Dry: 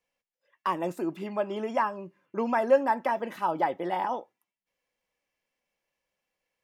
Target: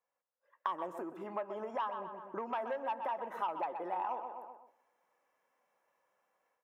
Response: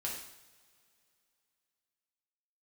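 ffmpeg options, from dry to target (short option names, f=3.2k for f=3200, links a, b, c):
-filter_complex "[0:a]highshelf=f=1.8k:t=q:w=1.5:g=-14,asoftclip=type=tanh:threshold=-16.5dB,dynaudnorm=f=500:g=3:m=12dB,asplit=2[a][b];[b]adelay=125,lowpass=f=2.5k:p=1,volume=-11dB,asplit=2[c][d];[d]adelay=125,lowpass=f=2.5k:p=1,volume=0.35,asplit=2[e][f];[f]adelay=125,lowpass=f=2.5k:p=1,volume=0.35,asplit=2[g][h];[h]adelay=125,lowpass=f=2.5k:p=1,volume=0.35[i];[a][c][e][g][i]amix=inputs=5:normalize=0,acompressor=threshold=-32dB:ratio=6,highpass=f=1.1k:p=1,bandreject=f=4.6k:w=6.8,asplit=2[j][k];[1:a]atrim=start_sample=2205,adelay=133[l];[k][l]afir=irnorm=-1:irlink=0,volume=-21dB[m];[j][m]amix=inputs=2:normalize=0,volume=1dB"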